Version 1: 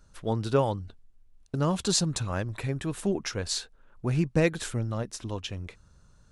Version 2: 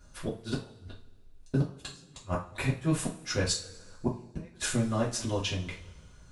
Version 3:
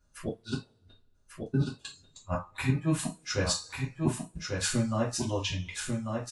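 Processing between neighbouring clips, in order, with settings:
inverted gate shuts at -19 dBFS, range -37 dB; two-slope reverb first 0.3 s, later 1.6 s, from -21 dB, DRR -6 dB; trim -1.5 dB
spectral noise reduction 14 dB; delay 1143 ms -4.5 dB

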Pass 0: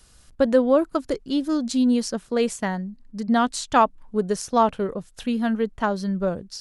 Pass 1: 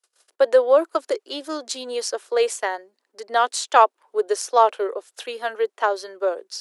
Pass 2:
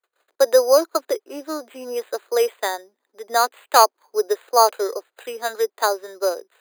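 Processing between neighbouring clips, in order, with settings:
gate -50 dBFS, range -33 dB; steep high-pass 370 Hz 48 dB/octave; trim +3.5 dB
careless resampling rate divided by 8×, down filtered, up hold; trim +1 dB

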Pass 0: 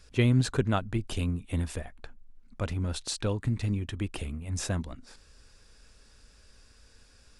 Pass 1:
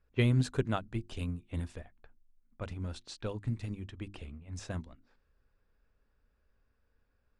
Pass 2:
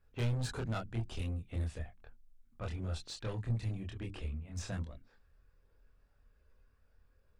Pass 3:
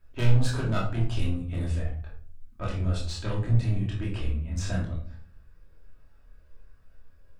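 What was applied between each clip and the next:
level-controlled noise filter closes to 1.5 kHz, open at -25 dBFS; hum notches 50/100/150/200/250/300/350 Hz; upward expansion 1.5:1, over -45 dBFS; trim -2.5 dB
in parallel at +2 dB: peak limiter -28 dBFS, peak gain reduction 10.5 dB; on the sum: saturation -28 dBFS, distortion -8 dB; chorus voices 6, 0.32 Hz, delay 26 ms, depth 1.4 ms; trim -2 dB
simulated room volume 510 m³, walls furnished, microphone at 2.8 m; trim +4.5 dB

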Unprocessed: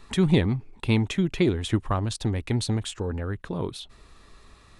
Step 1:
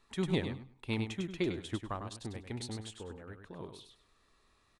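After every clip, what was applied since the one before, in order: bass shelf 210 Hz -7.5 dB; on a send: feedback delay 100 ms, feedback 22%, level -6 dB; on the sum: upward expansion 1.5:1, over -35 dBFS; trim -7.5 dB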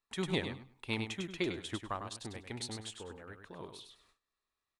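gate with hold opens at -56 dBFS; bass shelf 470 Hz -8 dB; trim +3 dB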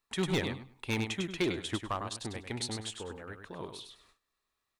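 overload inside the chain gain 29 dB; trim +5 dB

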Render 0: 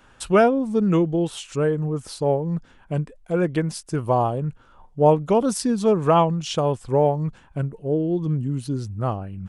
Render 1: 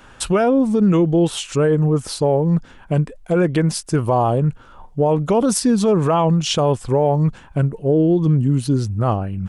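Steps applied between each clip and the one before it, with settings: loudness maximiser +16 dB; trim -7.5 dB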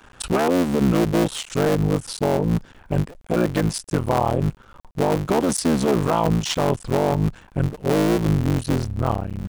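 cycle switcher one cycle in 3, muted; trim -2 dB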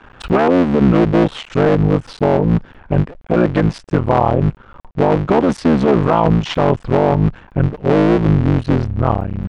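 low-pass 2.6 kHz 12 dB/octave; trim +6.5 dB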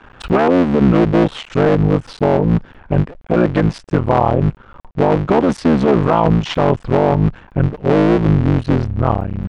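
no audible change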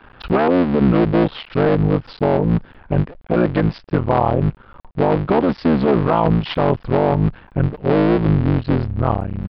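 resampled via 11.025 kHz; trim -2.5 dB

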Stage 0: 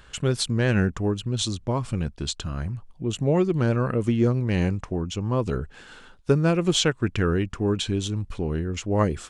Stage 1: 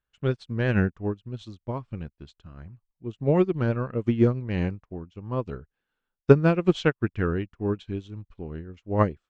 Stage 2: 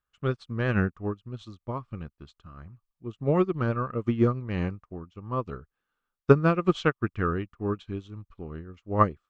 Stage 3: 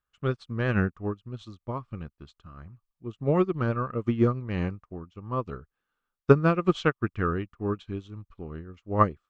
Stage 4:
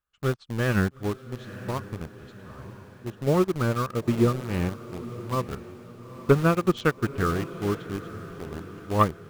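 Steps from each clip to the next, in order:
low-pass 3.5 kHz 12 dB/octave; upward expansion 2.5:1, over -43 dBFS; trim +6.5 dB
peaking EQ 1.2 kHz +12 dB 0.3 oct; trim -2.5 dB
no audible change
in parallel at -4.5 dB: bit crusher 5-bit; on the sum: saturation -7 dBFS, distortion -16 dB; echo that smears into a reverb 919 ms, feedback 49%, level -14.5 dB; trim -2 dB

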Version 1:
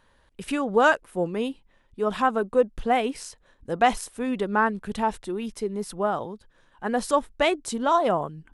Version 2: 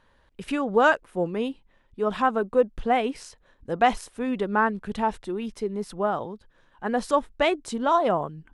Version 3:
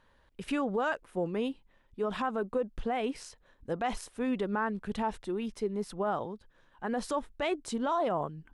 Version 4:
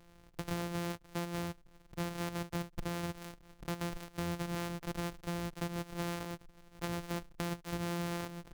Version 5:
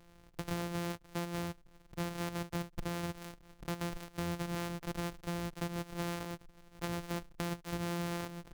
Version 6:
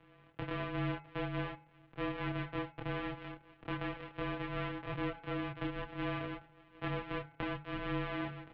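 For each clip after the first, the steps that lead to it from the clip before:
treble shelf 8 kHz -12 dB
peak limiter -18.5 dBFS, peak gain reduction 11 dB; trim -3.5 dB
sorted samples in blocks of 256 samples; compression 4:1, threshold -42 dBFS, peak gain reduction 13 dB; trim +5 dB
no audible change
chorus voices 6, 0.4 Hz, delay 28 ms, depth 3.3 ms; mistuned SSB -200 Hz 250–3300 Hz; de-hum 75.82 Hz, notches 34; trim +7 dB

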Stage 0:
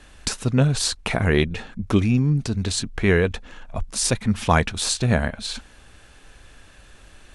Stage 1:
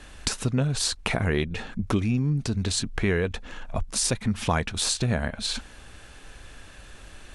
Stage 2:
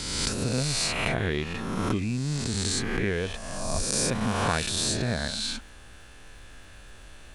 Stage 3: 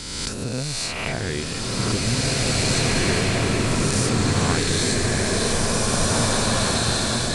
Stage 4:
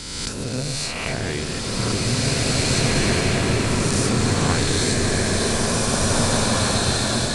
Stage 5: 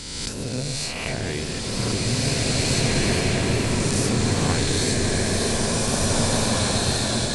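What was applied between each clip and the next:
compression 2.5:1, threshold -27 dBFS, peak gain reduction 10 dB; trim +2.5 dB
reverse spectral sustain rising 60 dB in 1.67 s; crackle 380 per s -50 dBFS; trim -5.5 dB
swelling reverb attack 2230 ms, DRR -6.5 dB
echo whose repeats swap between lows and highs 134 ms, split 890 Hz, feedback 60%, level -5.5 dB
peaking EQ 1.3 kHz -5 dB 0.56 oct; wow and flutter 24 cents; trim -1.5 dB

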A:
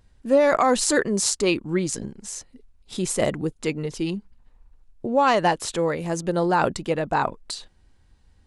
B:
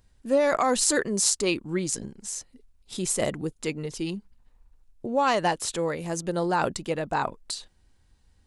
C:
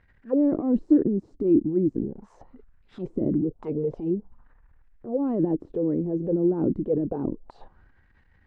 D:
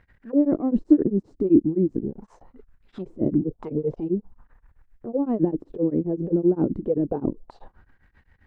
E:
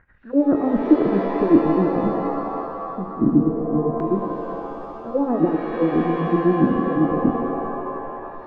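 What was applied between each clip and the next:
treble shelf 4.7 kHz +7 dB; trim -4.5 dB
transient shaper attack -9 dB, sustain +7 dB; touch-sensitive low-pass 310–2000 Hz down, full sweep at -26 dBFS
tremolo of two beating tones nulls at 7.7 Hz; trim +4.5 dB
LFO low-pass square 0.25 Hz 250–1500 Hz; dynamic bell 840 Hz, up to +4 dB, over -32 dBFS, Q 0.73; pitch-shifted reverb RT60 2.7 s, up +7 st, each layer -2 dB, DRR 5.5 dB

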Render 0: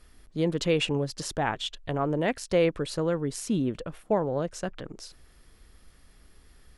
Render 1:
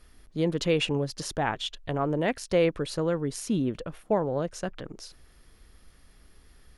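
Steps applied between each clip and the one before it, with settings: band-stop 7.7 kHz, Q 12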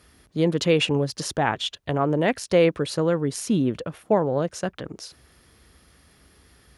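high-pass 62 Hz 24 dB/octave; trim +5 dB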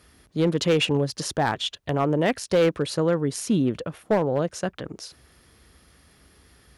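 hard clipper -14.5 dBFS, distortion -16 dB

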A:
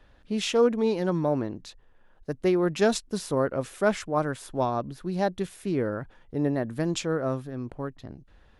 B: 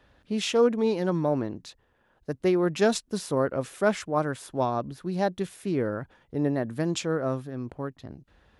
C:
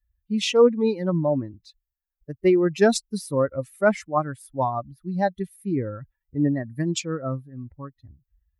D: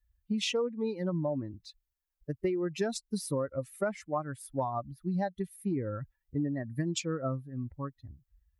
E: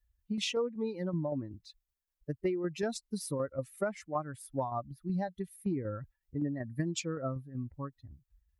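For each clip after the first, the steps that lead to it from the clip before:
high-pass 56 Hz
expander on every frequency bin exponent 2; trim +7 dB
compression 12:1, threshold -28 dBFS, peak gain reduction 17.5 dB
tremolo saw down 5.3 Hz, depth 45%

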